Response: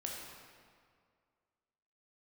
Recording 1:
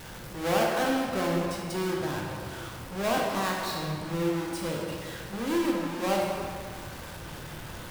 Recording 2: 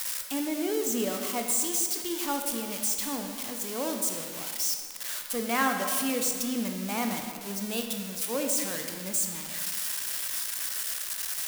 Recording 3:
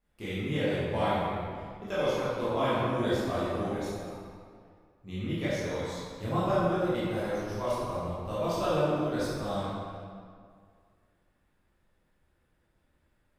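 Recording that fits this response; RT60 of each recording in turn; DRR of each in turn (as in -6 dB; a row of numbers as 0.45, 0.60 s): 1; 2.1, 2.1, 2.1 s; -2.0, 3.5, -11.5 dB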